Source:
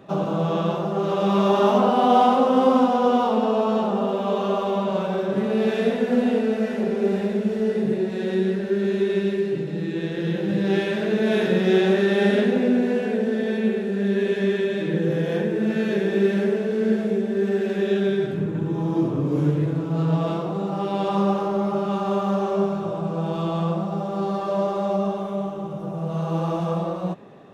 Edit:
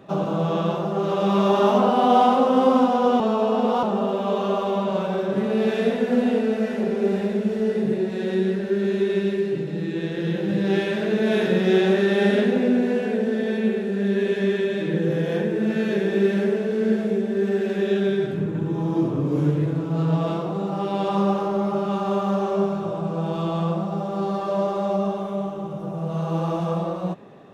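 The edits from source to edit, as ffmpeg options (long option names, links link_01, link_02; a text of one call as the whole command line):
ffmpeg -i in.wav -filter_complex "[0:a]asplit=3[link_01][link_02][link_03];[link_01]atrim=end=3.202[link_04];[link_02]atrim=start=3.198:end=3.832,asetpts=PTS-STARTPTS,areverse[link_05];[link_03]atrim=start=3.828[link_06];[link_04][link_05]acrossfade=duration=0.004:curve1=hsin:curve2=hsin[link_07];[link_07][link_06]acrossfade=duration=0.004:curve1=hsin:curve2=hsin" out.wav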